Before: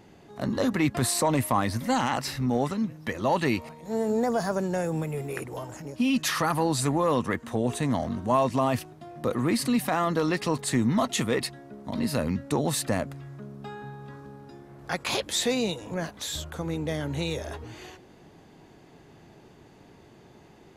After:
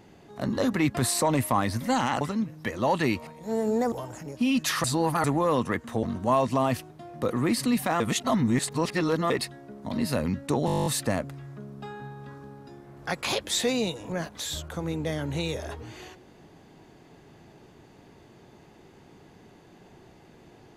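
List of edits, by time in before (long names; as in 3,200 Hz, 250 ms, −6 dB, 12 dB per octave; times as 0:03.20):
0:02.21–0:02.63: remove
0:04.34–0:05.51: remove
0:06.43–0:06.83: reverse
0:07.62–0:08.05: remove
0:10.02–0:11.32: reverse
0:12.68: stutter 0.02 s, 11 plays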